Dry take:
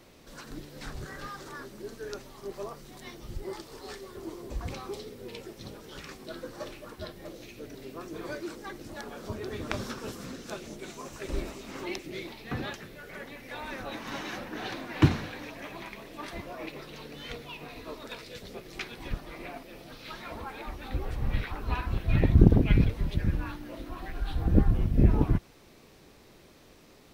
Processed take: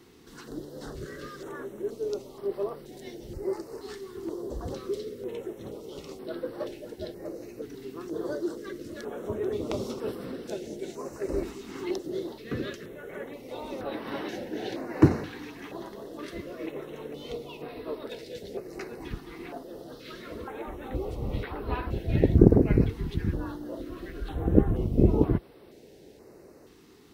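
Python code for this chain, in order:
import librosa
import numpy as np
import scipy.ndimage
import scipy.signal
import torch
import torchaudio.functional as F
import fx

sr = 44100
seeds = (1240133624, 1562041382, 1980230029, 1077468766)

y = scipy.signal.sosfilt(scipy.signal.butter(2, 40.0, 'highpass', fs=sr, output='sos'), x)
y = fx.peak_eq(y, sr, hz=420.0, db=10.5, octaves=1.3)
y = fx.notch(y, sr, hz=2400.0, q=14.0)
y = fx.filter_held_notch(y, sr, hz=2.1, low_hz=580.0, high_hz=6700.0)
y = y * 10.0 ** (-1.5 / 20.0)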